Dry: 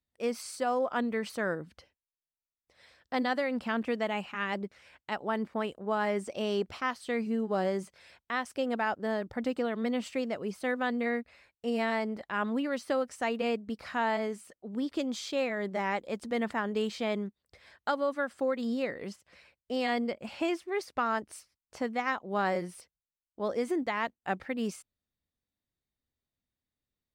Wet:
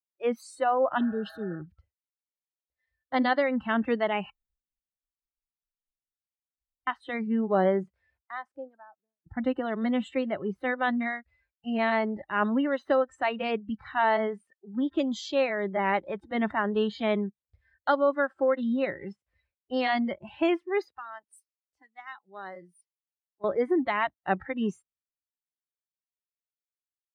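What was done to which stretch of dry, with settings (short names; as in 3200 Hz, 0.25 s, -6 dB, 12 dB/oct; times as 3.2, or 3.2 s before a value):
1–1.53 spectral repair 510–2500 Hz after
4.3–6.87 room tone
7.68–9.26 studio fade out
20.92–23.44 pre-emphasis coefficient 0.8
whole clip: spectral noise reduction 22 dB; high shelf 4700 Hz -11.5 dB; three-band expander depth 40%; gain +5.5 dB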